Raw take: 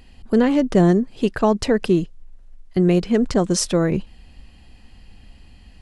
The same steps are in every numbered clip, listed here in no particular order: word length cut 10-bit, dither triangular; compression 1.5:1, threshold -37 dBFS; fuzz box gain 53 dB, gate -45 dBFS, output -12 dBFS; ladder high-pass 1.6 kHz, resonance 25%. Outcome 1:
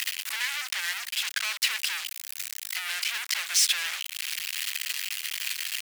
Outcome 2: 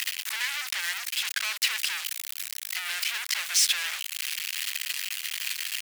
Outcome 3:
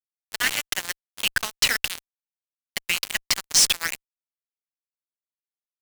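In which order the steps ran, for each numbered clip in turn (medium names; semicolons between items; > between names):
word length cut > compression > fuzz box > ladder high-pass; compression > word length cut > fuzz box > ladder high-pass; compression > ladder high-pass > word length cut > fuzz box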